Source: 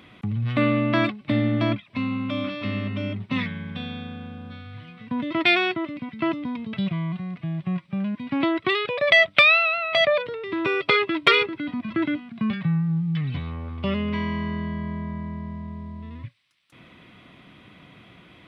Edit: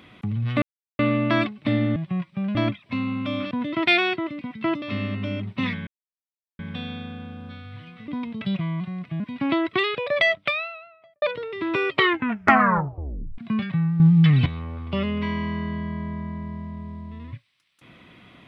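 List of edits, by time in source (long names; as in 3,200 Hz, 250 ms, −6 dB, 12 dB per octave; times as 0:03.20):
0:00.62: splice in silence 0.37 s
0:03.60: splice in silence 0.72 s
0:05.09–0:06.40: move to 0:02.55
0:07.52–0:08.11: move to 0:01.59
0:08.72–0:10.13: fade out and dull
0:10.79: tape stop 1.50 s
0:12.91–0:13.37: clip gain +10 dB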